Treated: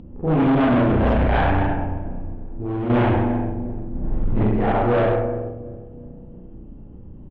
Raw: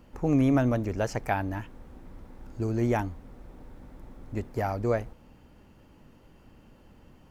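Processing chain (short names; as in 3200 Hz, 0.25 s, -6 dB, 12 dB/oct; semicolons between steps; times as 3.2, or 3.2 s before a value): 0.83–1.5 octaver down 1 oct, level +3 dB; 3.91–4.4 low shelf 310 Hz +12 dB; feedback echo 0.351 s, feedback 46%, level -15 dB; spring tank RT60 1.3 s, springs 33/45 ms, chirp 75 ms, DRR -9.5 dB; hard clip -18 dBFS, distortion -6 dB; low-pass opened by the level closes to 300 Hz, open at -10.5 dBFS; upward compressor, threshold -36 dBFS; bell 3300 Hz +12.5 dB 0.93 oct; 2.33–2.9 compressor 2:1, threshold -33 dBFS, peak gain reduction 7.5 dB; gain +3 dB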